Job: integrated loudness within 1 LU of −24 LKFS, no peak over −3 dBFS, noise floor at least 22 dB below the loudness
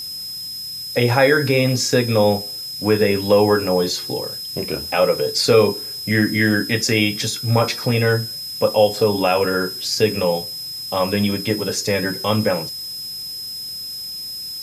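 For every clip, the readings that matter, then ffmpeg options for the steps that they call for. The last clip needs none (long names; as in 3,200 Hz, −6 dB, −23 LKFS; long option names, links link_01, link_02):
interfering tone 5,100 Hz; level of the tone −28 dBFS; background noise floor −30 dBFS; target noise floor −42 dBFS; integrated loudness −19.5 LKFS; sample peak −2.5 dBFS; target loudness −24.0 LKFS
→ -af "bandreject=frequency=5100:width=30"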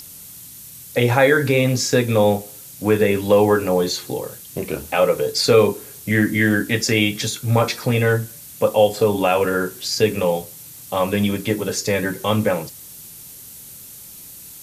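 interfering tone none found; background noise floor −40 dBFS; target noise floor −41 dBFS
→ -af "afftdn=noise_reduction=6:noise_floor=-40"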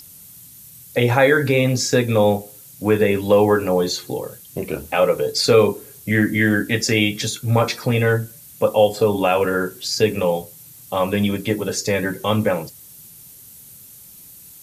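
background noise floor −43 dBFS; integrated loudness −19.0 LKFS; sample peak −2.0 dBFS; target loudness −24.0 LKFS
→ -af "volume=-5dB"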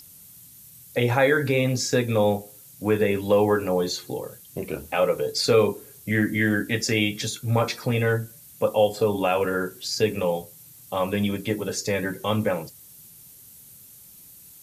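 integrated loudness −24.0 LKFS; sample peak −7.0 dBFS; background noise floor −48 dBFS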